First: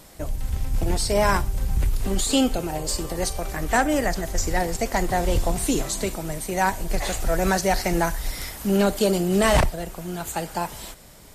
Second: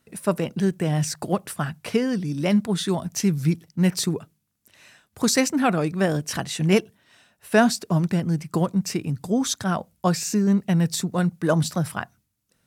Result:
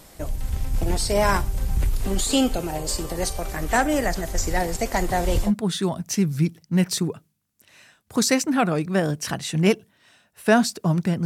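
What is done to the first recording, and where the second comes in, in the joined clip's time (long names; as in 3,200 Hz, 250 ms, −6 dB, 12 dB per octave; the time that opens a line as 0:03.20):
first
0:05.47: continue with second from 0:02.53, crossfade 0.10 s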